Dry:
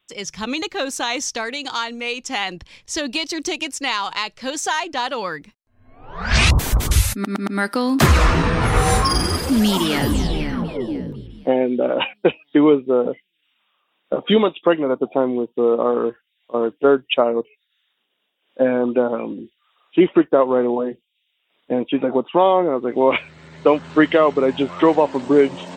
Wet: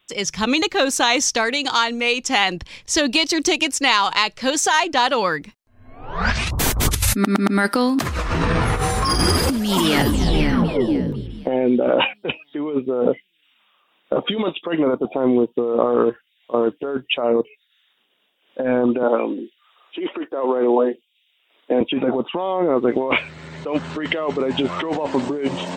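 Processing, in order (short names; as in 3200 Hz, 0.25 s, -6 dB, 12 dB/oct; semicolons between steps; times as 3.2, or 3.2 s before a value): 19.03–21.81 HPF 260 Hz 24 dB/oct; negative-ratio compressor -21 dBFS, ratio -1; gain +2.5 dB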